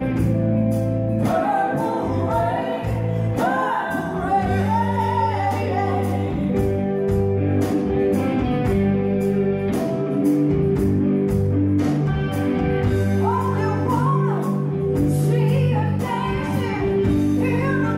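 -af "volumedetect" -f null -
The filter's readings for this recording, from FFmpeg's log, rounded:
mean_volume: -19.7 dB
max_volume: -8.8 dB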